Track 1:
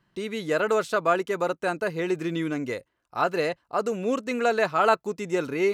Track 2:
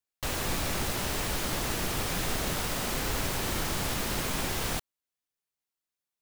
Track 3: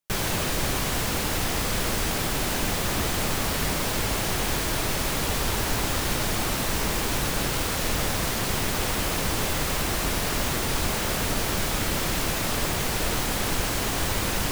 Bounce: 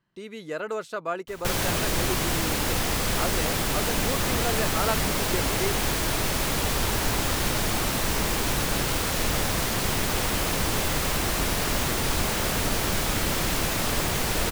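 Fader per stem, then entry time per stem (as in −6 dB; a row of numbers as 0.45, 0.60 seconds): −7.5, −15.5, +0.5 decibels; 0.00, 1.05, 1.35 seconds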